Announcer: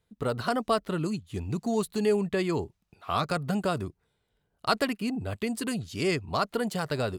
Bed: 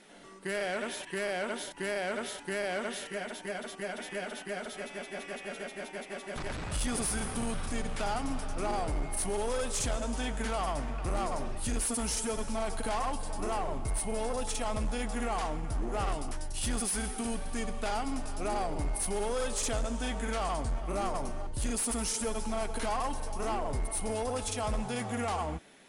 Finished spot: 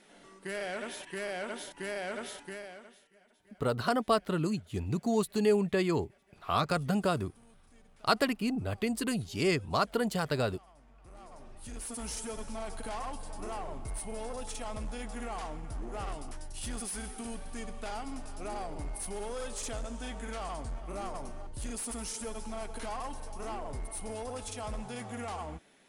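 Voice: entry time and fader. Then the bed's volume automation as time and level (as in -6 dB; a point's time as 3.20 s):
3.40 s, -1.0 dB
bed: 2.39 s -3.5 dB
3.12 s -26.5 dB
10.74 s -26.5 dB
12.06 s -6 dB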